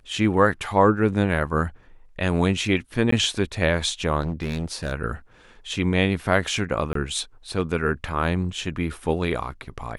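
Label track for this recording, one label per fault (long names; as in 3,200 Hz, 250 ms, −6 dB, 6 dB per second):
3.110000	3.120000	drop-out 14 ms
4.220000	4.930000	clipping −22 dBFS
6.930000	6.950000	drop-out 23 ms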